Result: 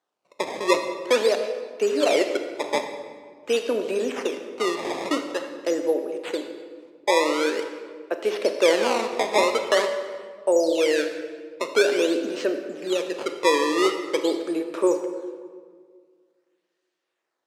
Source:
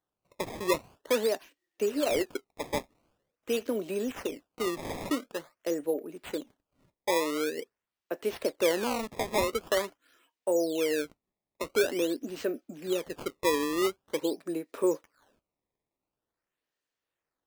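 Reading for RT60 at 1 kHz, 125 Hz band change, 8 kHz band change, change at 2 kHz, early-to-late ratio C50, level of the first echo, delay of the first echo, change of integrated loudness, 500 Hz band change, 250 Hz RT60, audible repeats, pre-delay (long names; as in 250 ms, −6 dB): 1.6 s, can't be measured, +5.0 dB, +9.0 dB, 7.5 dB, no echo audible, no echo audible, +7.5 dB, +8.0 dB, 2.3 s, no echo audible, 31 ms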